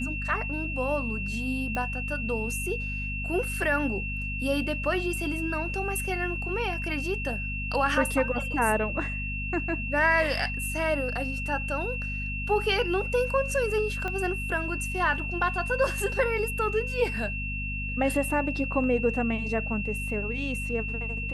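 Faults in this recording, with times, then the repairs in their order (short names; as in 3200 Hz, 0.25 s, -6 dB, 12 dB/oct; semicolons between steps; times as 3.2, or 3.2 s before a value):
hum 50 Hz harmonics 5 -34 dBFS
tone 2700 Hz -33 dBFS
1.75 pop -18 dBFS
14.08 pop -19 dBFS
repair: de-click; de-hum 50 Hz, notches 5; notch 2700 Hz, Q 30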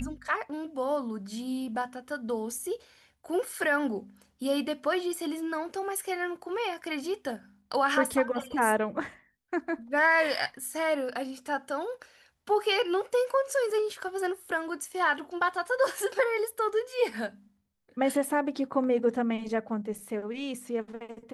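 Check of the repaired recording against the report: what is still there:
14.08 pop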